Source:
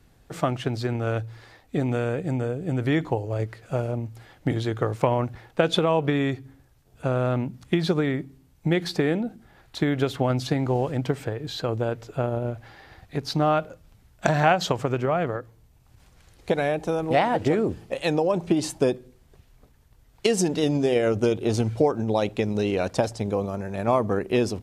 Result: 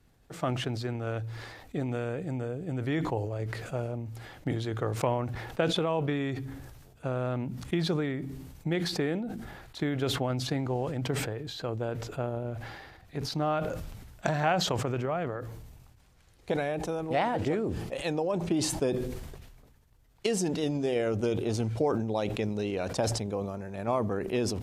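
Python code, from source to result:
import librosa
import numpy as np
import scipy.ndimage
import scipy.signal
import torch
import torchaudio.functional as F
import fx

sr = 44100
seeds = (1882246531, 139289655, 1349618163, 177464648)

y = fx.sustainer(x, sr, db_per_s=39.0)
y = y * 10.0 ** (-7.5 / 20.0)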